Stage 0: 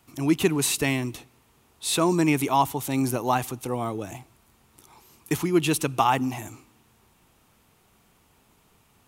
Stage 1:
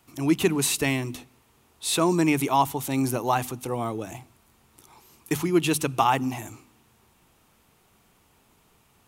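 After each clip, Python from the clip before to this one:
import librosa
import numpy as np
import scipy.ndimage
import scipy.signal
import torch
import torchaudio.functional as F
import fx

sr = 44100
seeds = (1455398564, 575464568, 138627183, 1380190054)

y = fx.hum_notches(x, sr, base_hz=50, count=5)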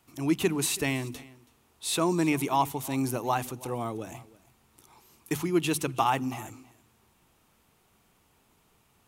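y = x + 10.0 ** (-21.0 / 20.0) * np.pad(x, (int(327 * sr / 1000.0), 0))[:len(x)]
y = y * librosa.db_to_amplitude(-4.0)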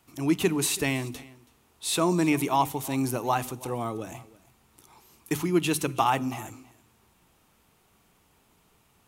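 y = fx.comb_fb(x, sr, f0_hz=60.0, decay_s=0.49, harmonics='odd', damping=0.0, mix_pct=40)
y = y * librosa.db_to_amplitude(5.5)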